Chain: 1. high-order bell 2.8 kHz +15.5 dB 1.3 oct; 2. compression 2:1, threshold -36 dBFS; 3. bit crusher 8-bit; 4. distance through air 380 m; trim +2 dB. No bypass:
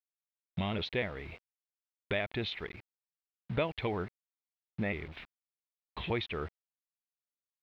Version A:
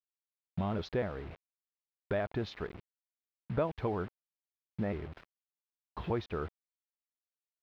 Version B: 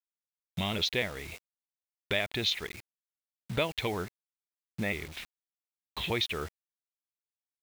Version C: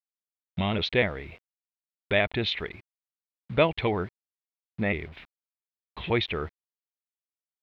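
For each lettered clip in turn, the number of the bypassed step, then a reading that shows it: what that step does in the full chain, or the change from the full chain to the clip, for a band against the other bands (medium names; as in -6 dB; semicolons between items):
1, 4 kHz band -11.5 dB; 4, 4 kHz band +8.5 dB; 2, mean gain reduction 6.0 dB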